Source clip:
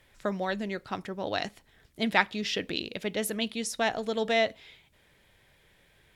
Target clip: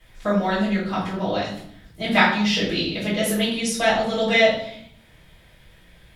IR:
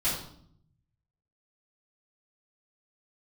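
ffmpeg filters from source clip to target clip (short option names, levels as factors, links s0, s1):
-filter_complex "[0:a]asettb=1/sr,asplit=3[s0][s1][s2];[s0]atrim=end=1.324[s3];[s1]atrim=start=1.32:end=2.04,asetpts=PTS-STARTPTS,afade=t=in:d=0.004:c=qsin,afade=t=out:st=0.716:d=0.004:c=qsin,acompressor=threshold=0.0251:ratio=6[s4];[s2]atrim=start=2.036[s5];[s3][s4]acrossfade=d=0.004:c1=hsin:c2=qsin[s6];[s6][s5]acrossfade=d=0.004:c1=qsin:c2=hsin[s7];[1:a]atrim=start_sample=2205[s8];[s7][s8]afir=irnorm=-1:irlink=0"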